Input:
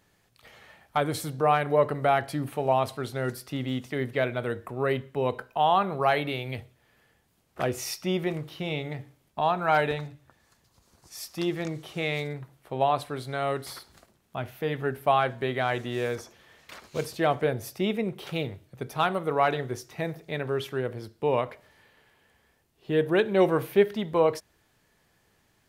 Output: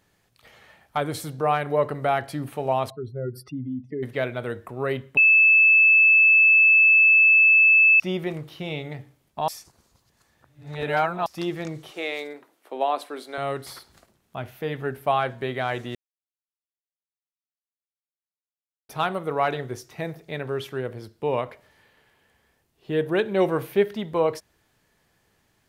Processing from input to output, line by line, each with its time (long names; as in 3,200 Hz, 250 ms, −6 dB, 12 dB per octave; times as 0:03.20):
0:02.90–0:04.03: expanding power law on the bin magnitudes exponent 2.6
0:05.17–0:08.00: beep over 2,620 Hz −12 dBFS
0:09.48–0:11.26: reverse
0:11.91–0:13.38: Butterworth high-pass 250 Hz
0:15.95–0:18.89: silence